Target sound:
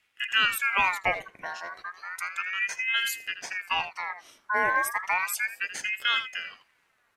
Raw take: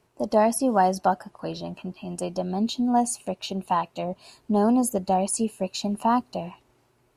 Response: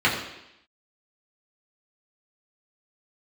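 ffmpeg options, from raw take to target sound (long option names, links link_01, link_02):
-filter_complex "[0:a]bandreject=frequency=239.6:width_type=h:width=4,bandreject=frequency=479.2:width_type=h:width=4,bandreject=frequency=718.8:width_type=h:width=4,asplit=2[link_01][link_02];[link_02]adelay=80,highpass=300,lowpass=3400,asoftclip=type=hard:threshold=-17dB,volume=-10dB[link_03];[link_01][link_03]amix=inputs=2:normalize=0,aeval=exprs='val(0)*sin(2*PI*1800*n/s+1800*0.3/0.33*sin(2*PI*0.33*n/s))':channel_layout=same,volume=-1.5dB"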